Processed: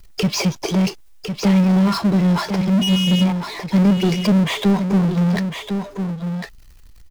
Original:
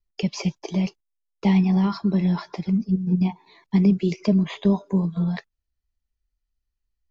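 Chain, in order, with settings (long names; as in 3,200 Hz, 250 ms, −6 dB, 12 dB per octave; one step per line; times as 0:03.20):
0:02.81–0:03.23: steady tone 2,900 Hz −28 dBFS
single-tap delay 1,054 ms −14.5 dB
power curve on the samples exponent 0.5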